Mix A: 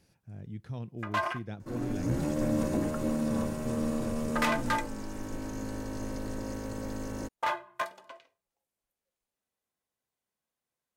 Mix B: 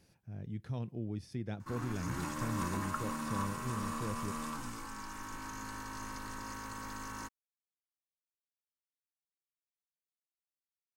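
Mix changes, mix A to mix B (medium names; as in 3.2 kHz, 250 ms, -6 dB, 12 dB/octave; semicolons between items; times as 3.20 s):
first sound: muted; second sound: add resonant low shelf 790 Hz -10 dB, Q 3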